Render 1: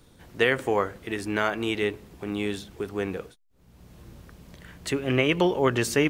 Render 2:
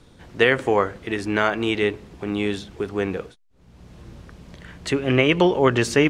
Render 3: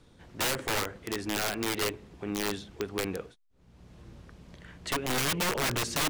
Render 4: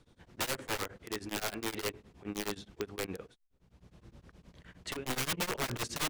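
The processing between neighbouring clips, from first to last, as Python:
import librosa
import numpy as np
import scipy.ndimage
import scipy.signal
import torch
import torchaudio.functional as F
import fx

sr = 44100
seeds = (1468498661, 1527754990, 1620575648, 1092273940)

y1 = scipy.signal.sosfilt(scipy.signal.bessel(2, 6400.0, 'lowpass', norm='mag', fs=sr, output='sos'), x)
y1 = F.gain(torch.from_numpy(y1), 5.0).numpy()
y2 = (np.mod(10.0 ** (15.5 / 20.0) * y1 + 1.0, 2.0) - 1.0) / 10.0 ** (15.5 / 20.0)
y2 = F.gain(torch.from_numpy(y2), -7.5).numpy()
y3 = y2 * np.abs(np.cos(np.pi * 9.6 * np.arange(len(y2)) / sr))
y3 = F.gain(torch.from_numpy(y3), -3.0).numpy()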